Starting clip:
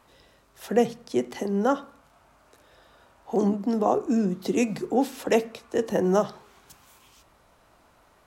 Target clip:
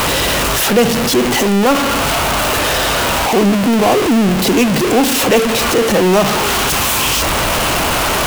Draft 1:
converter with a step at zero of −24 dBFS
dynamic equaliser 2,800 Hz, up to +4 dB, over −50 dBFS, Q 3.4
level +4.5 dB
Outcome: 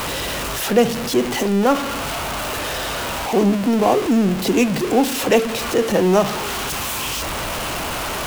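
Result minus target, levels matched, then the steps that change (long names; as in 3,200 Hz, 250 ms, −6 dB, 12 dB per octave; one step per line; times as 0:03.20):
converter with a step at zero: distortion −6 dB
change: converter with a step at zero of −14 dBFS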